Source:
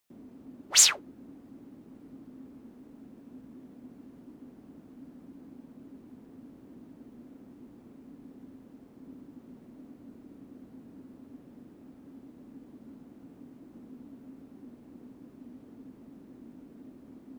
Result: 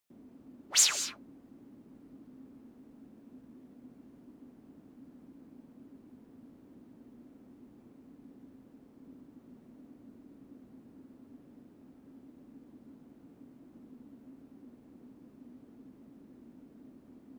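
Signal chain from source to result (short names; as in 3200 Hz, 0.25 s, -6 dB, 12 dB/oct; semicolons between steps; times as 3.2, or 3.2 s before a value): non-linear reverb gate 0.24 s rising, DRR 10.5 dB; gain -5 dB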